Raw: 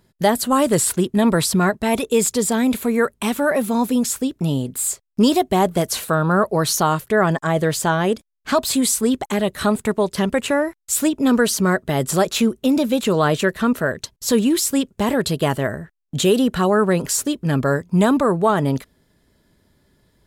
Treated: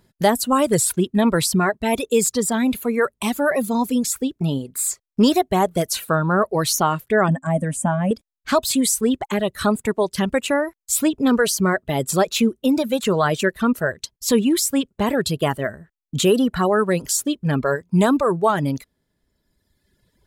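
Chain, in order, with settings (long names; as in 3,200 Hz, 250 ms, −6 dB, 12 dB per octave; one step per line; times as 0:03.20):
reverb reduction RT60 1.6 s
0:07.28–0:08.11: drawn EQ curve 130 Hz 0 dB, 260 Hz +12 dB, 400 Hz −27 dB, 560 Hz +2 dB, 1,300 Hz −8 dB, 1,800 Hz −6 dB, 2,800 Hz −11 dB, 4,300 Hz −26 dB, 9,000 Hz +4 dB, 14,000 Hz −19 dB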